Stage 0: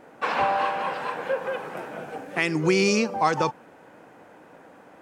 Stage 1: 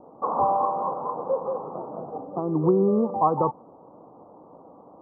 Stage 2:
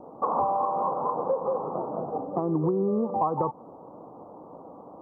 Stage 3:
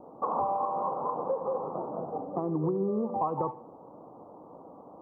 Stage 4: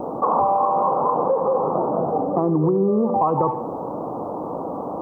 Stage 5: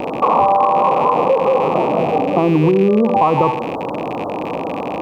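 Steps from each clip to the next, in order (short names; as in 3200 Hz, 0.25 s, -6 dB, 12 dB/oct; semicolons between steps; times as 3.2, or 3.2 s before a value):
steep low-pass 1200 Hz 96 dB/oct; gain +1.5 dB
compressor 6:1, threshold -26 dBFS, peak gain reduction 10.5 dB; gain +3.5 dB
tape echo 70 ms, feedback 57%, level -13.5 dB, low-pass 1000 Hz; gain -4 dB
fast leveller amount 50%; gain +9 dB
rattling part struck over -35 dBFS, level -26 dBFS; gain +5.5 dB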